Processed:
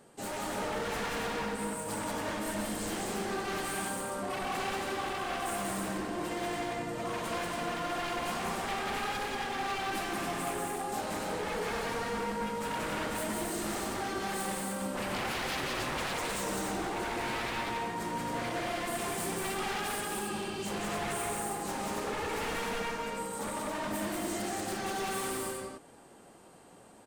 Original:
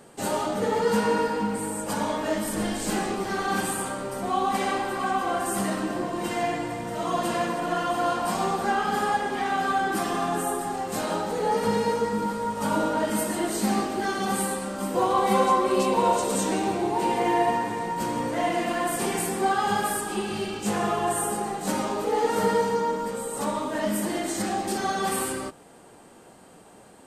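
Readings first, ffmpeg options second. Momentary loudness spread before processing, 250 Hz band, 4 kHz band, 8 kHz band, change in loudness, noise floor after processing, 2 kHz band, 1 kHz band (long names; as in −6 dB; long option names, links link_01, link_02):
6 LU, −9.5 dB, −3.5 dB, −6.0 dB, −8.5 dB, −55 dBFS, −4.5 dB, −10.0 dB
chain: -af "aeval=exprs='0.0596*(abs(mod(val(0)/0.0596+3,4)-2)-1)':channel_layout=same,aecho=1:1:183.7|277:0.794|0.631,volume=-8dB"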